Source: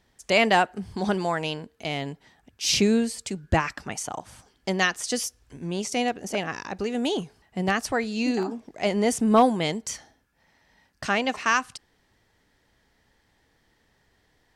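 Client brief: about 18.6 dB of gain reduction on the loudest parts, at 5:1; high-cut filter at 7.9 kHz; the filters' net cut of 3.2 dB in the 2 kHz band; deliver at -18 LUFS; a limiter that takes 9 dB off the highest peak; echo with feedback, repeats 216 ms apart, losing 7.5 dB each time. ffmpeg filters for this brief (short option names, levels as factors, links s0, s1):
-af "lowpass=7900,equalizer=f=2000:t=o:g=-4,acompressor=threshold=0.0178:ratio=5,alimiter=level_in=1.88:limit=0.0631:level=0:latency=1,volume=0.531,aecho=1:1:216|432|648|864|1080:0.422|0.177|0.0744|0.0312|0.0131,volume=11.9"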